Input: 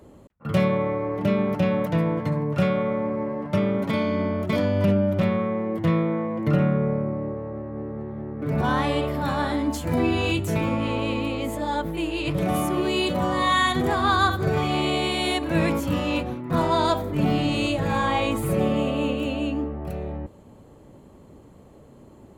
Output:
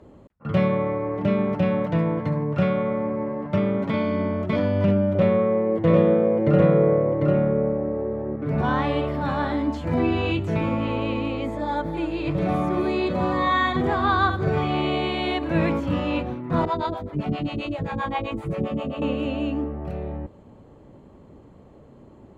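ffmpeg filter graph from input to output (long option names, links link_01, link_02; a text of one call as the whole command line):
ffmpeg -i in.wav -filter_complex "[0:a]asettb=1/sr,asplit=3[link_01][link_02][link_03];[link_01]atrim=end=5.154[link_04];[link_02]atrim=start=5.15:end=8.36,asetpts=PTS-STARTPTS,afade=type=in:duration=0.004:curve=qsin,afade=type=out:start_time=3.206:duration=0.004:curve=qsin,equalizer=frequency=490:width_type=o:width=0.57:gain=10,bandreject=frequency=5000:width=22,aecho=1:1:748:0.668,atrim=end_sample=141561[link_05];[link_03]atrim=start=8.356[link_06];[link_04][link_05]acrossfade=duration=0.004:curve1=hsin:curve2=qsin[link_07];[link_07][link_06]acrossfade=duration=0.004:curve1=qsin:curve2=hsin,asettb=1/sr,asplit=3[link_08][link_09][link_10];[link_08]atrim=end=11.444[link_11];[link_09]atrim=start=11.44:end=13.77,asetpts=PTS-STARTPTS,afade=type=in:duration=0.004:curve=qsin,afade=type=out:start_time=2.326:duration=0.004:curve=qsin,bandreject=frequency=2900:width=5.7,aecho=1:1:248:0.266,atrim=end_sample=102753[link_12];[link_10]atrim=start=13.766[link_13];[link_11][link_12]acrossfade=duration=0.004:curve1=hsin:curve2=qsin[link_14];[link_14][link_13]acrossfade=duration=0.004:curve1=qsin:curve2=hsin,asettb=1/sr,asplit=3[link_15][link_16][link_17];[link_15]atrim=end=16.654[link_18];[link_16]atrim=start=16.65:end=19.02,asetpts=PTS-STARTPTS,afade=type=in:duration=0.004:curve=qsin,afade=type=out:start_time=2.366:duration=0.004:curve=qsin,equalizer=frequency=13000:width_type=o:width=0.22:gain=-4,acrossover=split=470[link_19][link_20];[link_19]aeval=exprs='val(0)*(1-1/2+1/2*cos(2*PI*7.6*n/s))':channel_layout=same[link_21];[link_20]aeval=exprs='val(0)*(1-1/2-1/2*cos(2*PI*7.6*n/s))':channel_layout=same[link_22];[link_21][link_22]amix=inputs=2:normalize=0[link_23];[link_17]atrim=start=19.016[link_24];[link_18][link_23]acrossfade=duration=0.004:curve1=hsin:curve2=qsin[link_25];[link_25][link_24]acrossfade=duration=0.004:curve1=qsin:curve2=hsin,aemphasis=mode=reproduction:type=50fm,acrossover=split=4700[link_26][link_27];[link_27]acompressor=threshold=-56dB:ratio=4:attack=1:release=60[link_28];[link_26][link_28]amix=inputs=2:normalize=0,equalizer=frequency=11000:width=1.1:gain=-4" out.wav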